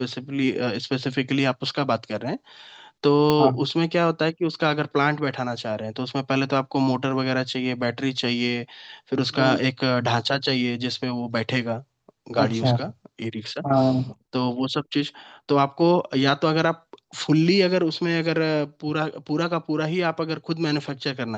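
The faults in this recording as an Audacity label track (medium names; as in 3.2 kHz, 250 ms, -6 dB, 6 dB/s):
3.300000	3.300000	pop -7 dBFS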